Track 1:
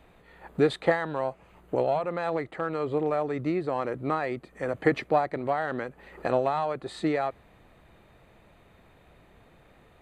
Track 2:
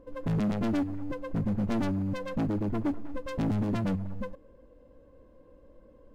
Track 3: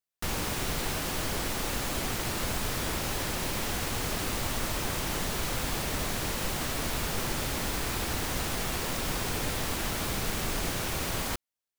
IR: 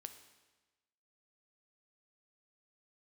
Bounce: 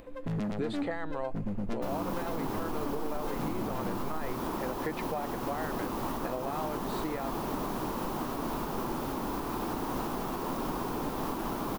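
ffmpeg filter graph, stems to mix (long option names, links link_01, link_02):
-filter_complex "[0:a]volume=-5.5dB[link_01];[1:a]asubboost=boost=3.5:cutoff=53,asoftclip=type=tanh:threshold=-21.5dB,volume=-5dB,asplit=2[link_02][link_03];[link_03]volume=-5dB[link_04];[2:a]equalizer=frequency=250:width_type=o:width=1:gain=5,equalizer=frequency=500:width_type=o:width=1:gain=-5,equalizer=frequency=1000:width_type=o:width=1:gain=11,equalizer=frequency=2000:width_type=o:width=1:gain=-8,equalizer=frequency=4000:width_type=o:width=1:gain=-4,equalizer=frequency=8000:width_type=o:width=1:gain=-9,equalizer=frequency=380:width=0.89:gain=9.5,adelay=1600,volume=-5dB[link_05];[3:a]atrim=start_sample=2205[link_06];[link_04][link_06]afir=irnorm=-1:irlink=0[link_07];[link_01][link_02][link_05][link_07]amix=inputs=4:normalize=0,acompressor=mode=upward:threshold=-45dB:ratio=2.5,equalizer=frequency=76:width=3.4:gain=-13,alimiter=limit=-23.5dB:level=0:latency=1:release=196"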